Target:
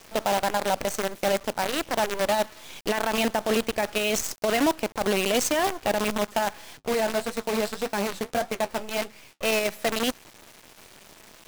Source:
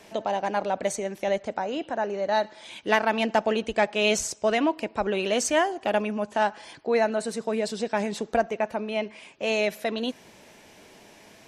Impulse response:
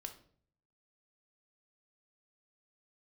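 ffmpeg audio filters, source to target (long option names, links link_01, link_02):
-filter_complex "[0:a]acrusher=bits=5:dc=4:mix=0:aa=0.000001,asettb=1/sr,asplit=3[link_01][link_02][link_03];[link_01]atrim=end=6.774[link_04];[link_02]atrim=start=6.77:end=9.45,asetpts=PTS-STARTPTS,afade=type=in:duration=0.004:curve=qsin,afade=type=out:start_time=2.676:duration=0.004:curve=qsin,flanger=delay=8.4:depth=6.2:regen=-51:speed=1.7:shape=triangular[link_05];[link_03]atrim=start=9.446[link_06];[link_04][link_05]acrossfade=duration=0.004:curve1=hsin:curve2=qsin[link_07];[link_07][link_06]acrossfade=duration=0.004:curve1=qsin:curve2=hsin,alimiter=limit=-19.5dB:level=0:latency=1:release=18,volume=3.5dB"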